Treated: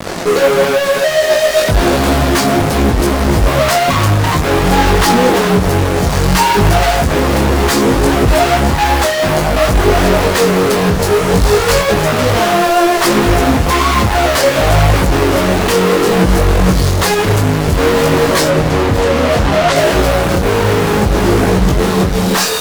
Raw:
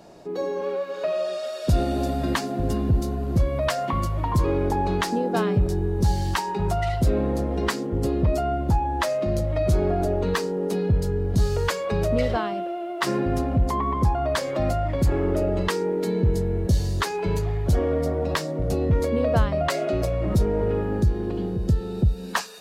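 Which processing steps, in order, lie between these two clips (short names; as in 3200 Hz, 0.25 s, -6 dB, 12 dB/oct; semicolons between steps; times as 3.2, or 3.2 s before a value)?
10.97–11.89 de-hum 45.89 Hz, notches 8; in parallel at 0 dB: negative-ratio compressor -24 dBFS; on the sum: fuzz box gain 44 dB, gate -38 dBFS; 18.48–19.76 air absorption 63 m; thinning echo 0.959 s, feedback 84%, level -14 dB; on a send at -17 dB: reverb RT60 0.80 s, pre-delay 3 ms; on the sum: detuned doubles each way 21 cents; gain +6 dB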